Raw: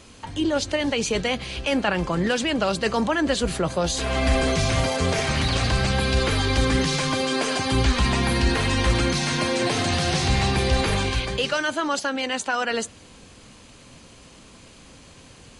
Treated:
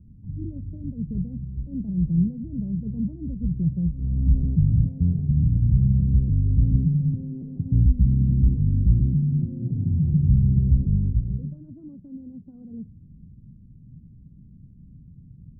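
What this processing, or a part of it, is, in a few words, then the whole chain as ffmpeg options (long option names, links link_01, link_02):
the neighbour's flat through the wall: -af "lowpass=frequency=190:width=0.5412,lowpass=frequency=190:width=1.3066,equalizer=frequency=150:width_type=o:width=0.75:gain=6,volume=3.5dB"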